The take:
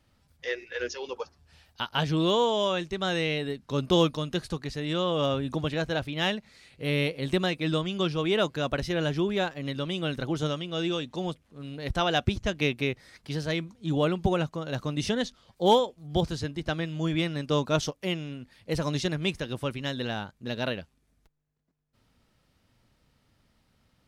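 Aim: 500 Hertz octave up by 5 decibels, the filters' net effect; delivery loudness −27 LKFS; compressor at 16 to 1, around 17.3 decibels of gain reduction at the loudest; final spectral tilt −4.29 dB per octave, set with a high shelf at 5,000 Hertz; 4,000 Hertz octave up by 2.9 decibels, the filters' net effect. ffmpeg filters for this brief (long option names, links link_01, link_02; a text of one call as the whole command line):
ffmpeg -i in.wav -af "equalizer=frequency=500:width_type=o:gain=6,equalizer=frequency=4000:width_type=o:gain=6,highshelf=frequency=5000:gain=-6,acompressor=threshold=-30dB:ratio=16,volume=8.5dB" out.wav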